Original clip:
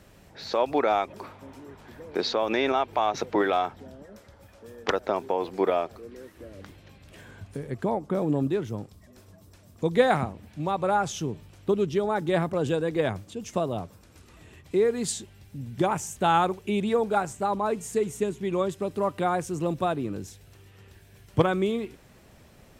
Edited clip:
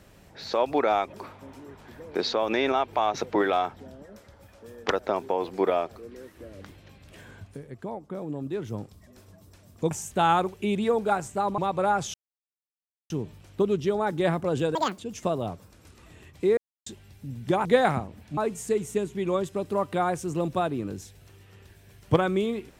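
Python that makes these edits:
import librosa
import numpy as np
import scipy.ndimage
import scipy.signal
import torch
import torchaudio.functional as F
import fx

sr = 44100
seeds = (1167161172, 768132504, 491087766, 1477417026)

y = fx.edit(x, sr, fx.fade_down_up(start_s=7.34, length_s=1.42, db=-8.5, fade_s=0.32),
    fx.swap(start_s=9.91, length_s=0.72, other_s=15.96, other_length_s=1.67),
    fx.insert_silence(at_s=11.19, length_s=0.96),
    fx.speed_span(start_s=12.84, length_s=0.45, speed=1.93),
    fx.silence(start_s=14.88, length_s=0.29), tone=tone)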